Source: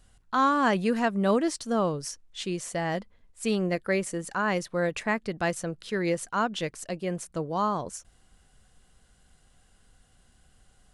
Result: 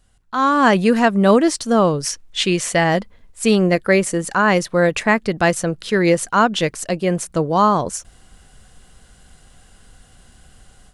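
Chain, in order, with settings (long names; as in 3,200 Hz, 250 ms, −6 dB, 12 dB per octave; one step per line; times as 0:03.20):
0:01.98–0:02.84: dynamic equaliser 2,400 Hz, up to +6 dB, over −49 dBFS, Q 0.78
automatic gain control gain up to 13 dB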